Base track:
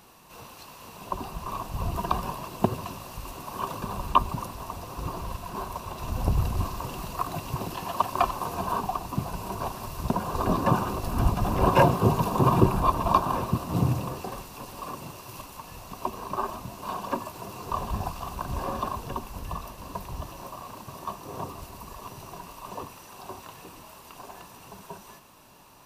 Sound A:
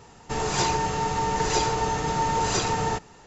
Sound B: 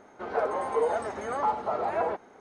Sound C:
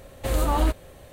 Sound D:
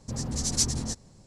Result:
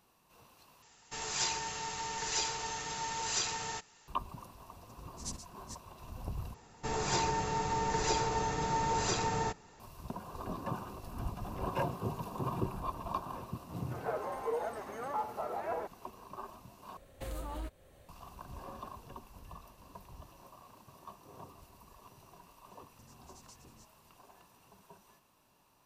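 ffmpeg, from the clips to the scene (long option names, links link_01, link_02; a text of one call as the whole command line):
ffmpeg -i bed.wav -i cue0.wav -i cue1.wav -i cue2.wav -i cue3.wav -filter_complex "[1:a]asplit=2[link_01][link_02];[4:a]asplit=2[link_03][link_04];[0:a]volume=-15.5dB[link_05];[link_01]tiltshelf=frequency=1200:gain=-8.5[link_06];[link_03]aeval=exprs='val(0)*pow(10,-31*(0.5-0.5*cos(2*PI*2.1*n/s))/20)':channel_layout=same[link_07];[link_02]bandreject=frequency=3000:width=18[link_08];[3:a]alimiter=limit=-19dB:level=0:latency=1:release=302[link_09];[link_04]acompressor=threshold=-42dB:ratio=4:attack=4.2:release=352:knee=1:detection=peak[link_10];[link_05]asplit=4[link_11][link_12][link_13][link_14];[link_11]atrim=end=0.824[link_15];[link_06]atrim=end=3.26,asetpts=PTS-STARTPTS,volume=-12dB[link_16];[link_12]atrim=start=4.076:end=6.544[link_17];[link_08]atrim=end=3.26,asetpts=PTS-STARTPTS,volume=-7.5dB[link_18];[link_13]atrim=start=9.796:end=16.974[link_19];[link_09]atrim=end=1.12,asetpts=PTS-STARTPTS,volume=-12.5dB[link_20];[link_14]atrim=start=18.086[link_21];[link_07]atrim=end=1.26,asetpts=PTS-STARTPTS,volume=-11dB,afade=type=in:duration=0.004:curve=hsin,afade=type=out:start_time=1.256:duration=0.004:curve=hsin,adelay=212121S[link_22];[2:a]atrim=end=2.4,asetpts=PTS-STARTPTS,volume=-9dB,afade=type=in:duration=0.004:curve=hsin,afade=type=out:start_time=2.396:duration=0.004:curve=hsin,adelay=13710[link_23];[link_10]atrim=end=1.26,asetpts=PTS-STARTPTS,volume=-15dB,afade=type=in:duration=0.004:curve=hsin,afade=type=out:start_time=1.256:duration=0.004:curve=hsin,adelay=22910[link_24];[link_15][link_16]acrossfade=duration=0.004:curve1=hsin:curve2=hsin[link_25];[link_25][link_17]acrossfade=duration=0.004:curve1=hsin:curve2=hsin[link_26];[link_26][link_18]acrossfade=duration=0.004:curve1=hsin:curve2=hsin[link_27];[link_27][link_19]acrossfade=duration=0.004:curve1=hsin:curve2=hsin[link_28];[link_28][link_20]acrossfade=duration=0.004:curve1=hsin:curve2=hsin[link_29];[link_29][link_21]acrossfade=duration=0.004:curve1=hsin:curve2=hsin[link_30];[link_30][link_22][link_23][link_24]amix=inputs=4:normalize=0" out.wav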